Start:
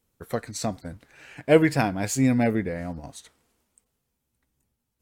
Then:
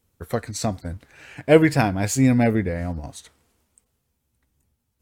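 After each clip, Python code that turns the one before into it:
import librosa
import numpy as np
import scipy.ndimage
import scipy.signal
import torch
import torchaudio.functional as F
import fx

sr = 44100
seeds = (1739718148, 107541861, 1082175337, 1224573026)

y = fx.peak_eq(x, sr, hz=83.0, db=8.0, octaves=0.77)
y = y * 10.0 ** (3.0 / 20.0)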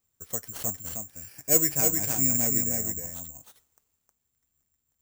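y = x + 10.0 ** (-4.0 / 20.0) * np.pad(x, (int(313 * sr / 1000.0), 0))[:len(x)]
y = (np.kron(y[::6], np.eye(6)[0]) * 6)[:len(y)]
y = y * 10.0 ** (-15.5 / 20.0)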